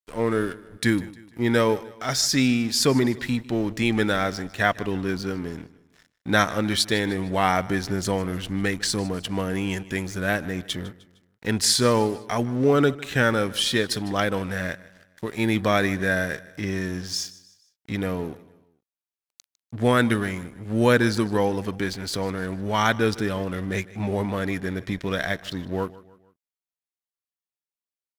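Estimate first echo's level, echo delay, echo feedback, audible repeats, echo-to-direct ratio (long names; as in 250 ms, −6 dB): −19.5 dB, 153 ms, 44%, 3, −18.5 dB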